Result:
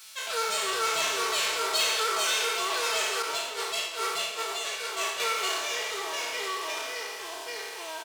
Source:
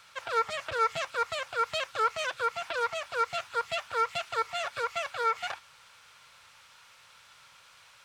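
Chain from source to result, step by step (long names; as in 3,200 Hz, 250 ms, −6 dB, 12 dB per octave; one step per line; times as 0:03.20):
peak hold with a decay on every bin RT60 1.30 s
delay with pitch and tempo change per echo 226 ms, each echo −3 semitones, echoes 2
0:03.22–0:05.20: downward expander −20 dBFS
parametric band 1,200 Hz −8 dB 1.8 octaves
comb filter 4.6 ms, depth 73%
in parallel at −6 dB: hard clipping −32 dBFS, distortion −6 dB
on the sum: RIAA equalisation recording
level −3.5 dB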